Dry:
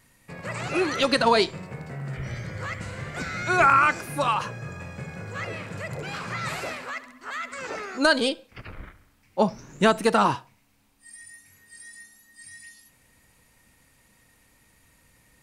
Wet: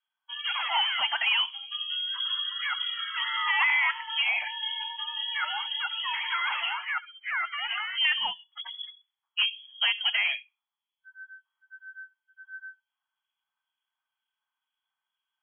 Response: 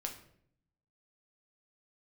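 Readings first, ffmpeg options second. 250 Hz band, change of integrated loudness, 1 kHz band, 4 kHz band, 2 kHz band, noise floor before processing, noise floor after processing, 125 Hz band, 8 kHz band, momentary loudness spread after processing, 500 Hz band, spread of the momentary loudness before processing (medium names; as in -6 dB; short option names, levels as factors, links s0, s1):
under -40 dB, -2.0 dB, -8.5 dB, +7.5 dB, +0.5 dB, -62 dBFS, under -85 dBFS, under -40 dB, under -40 dB, 18 LU, -28.0 dB, 24 LU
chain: -filter_complex "[0:a]afftdn=nr=31:nf=-36,acrossover=split=1300[s0][s1];[s0]aeval=exprs='val(0)*(1-0.5/2+0.5/2*cos(2*PI*2.1*n/s))':c=same[s2];[s1]aeval=exprs='val(0)*(1-0.5/2-0.5/2*cos(2*PI*2.1*n/s))':c=same[s3];[s2][s3]amix=inputs=2:normalize=0,acompressor=threshold=0.0224:ratio=2,asoftclip=type=tanh:threshold=0.0631,lowpass=f=2900:t=q:w=0.5098,lowpass=f=2900:t=q:w=0.6013,lowpass=f=2900:t=q:w=0.9,lowpass=f=2900:t=q:w=2.563,afreqshift=-3400,lowshelf=f=620:t=q:w=3:g=-12,volume=1.88"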